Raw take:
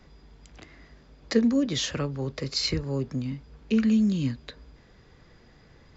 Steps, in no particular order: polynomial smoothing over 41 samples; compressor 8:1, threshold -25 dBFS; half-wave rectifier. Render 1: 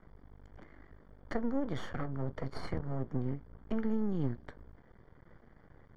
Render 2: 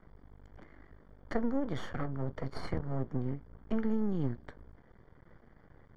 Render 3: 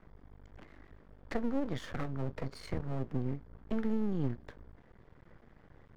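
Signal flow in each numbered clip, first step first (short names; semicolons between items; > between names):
compressor > half-wave rectifier > polynomial smoothing; half-wave rectifier > compressor > polynomial smoothing; compressor > polynomial smoothing > half-wave rectifier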